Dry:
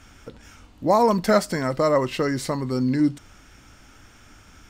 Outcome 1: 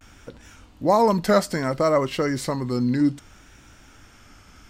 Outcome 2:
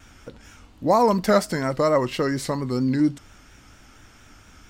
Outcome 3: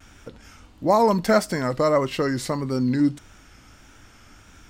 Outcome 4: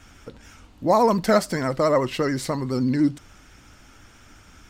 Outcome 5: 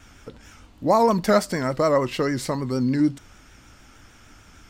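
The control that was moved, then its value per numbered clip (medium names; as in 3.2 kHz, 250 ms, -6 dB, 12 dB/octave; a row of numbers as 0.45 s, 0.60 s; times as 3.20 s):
vibrato, rate: 0.62 Hz, 4.3 Hz, 1.6 Hz, 14 Hz, 6.6 Hz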